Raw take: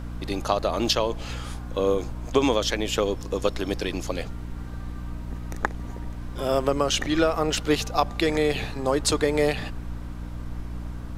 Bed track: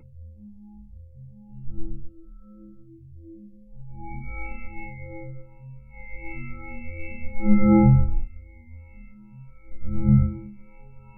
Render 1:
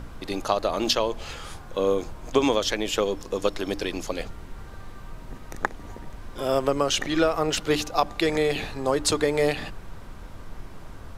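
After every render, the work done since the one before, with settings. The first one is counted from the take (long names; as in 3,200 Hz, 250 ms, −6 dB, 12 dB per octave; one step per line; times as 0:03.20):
mains-hum notches 60/120/180/240/300 Hz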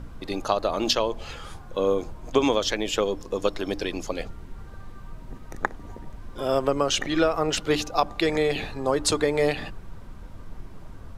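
broadband denoise 6 dB, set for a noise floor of −42 dBFS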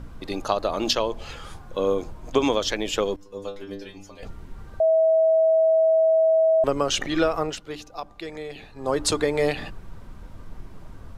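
0:03.16–0:04.23: stiff-string resonator 97 Hz, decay 0.41 s, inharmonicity 0.002
0:04.80–0:06.64: beep over 645 Hz −15 dBFS
0:07.39–0:08.93: duck −12 dB, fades 0.20 s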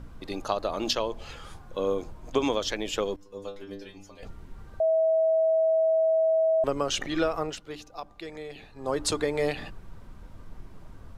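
level −4.5 dB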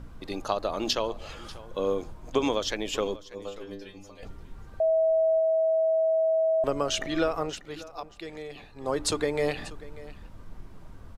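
single-tap delay 590 ms −18.5 dB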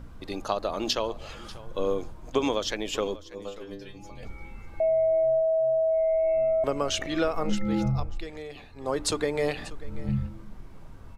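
mix in bed track −11 dB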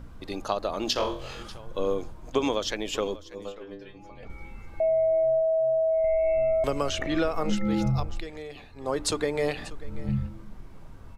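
0:00.93–0:01.43: flutter between parallel walls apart 4 metres, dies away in 0.41 s
0:03.52–0:04.30: bass and treble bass −5 dB, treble −14 dB
0:06.04–0:08.20: multiband upward and downward compressor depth 70%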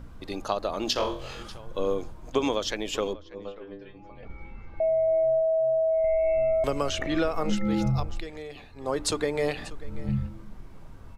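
0:03.13–0:05.08: high-frequency loss of the air 190 metres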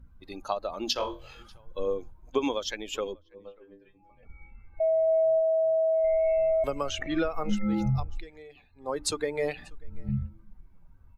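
spectral dynamics exaggerated over time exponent 1.5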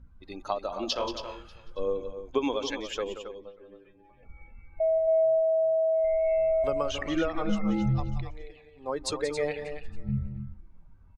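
high-frequency loss of the air 56 metres
loudspeakers that aren't time-aligned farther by 62 metres −11 dB, 94 metres −10 dB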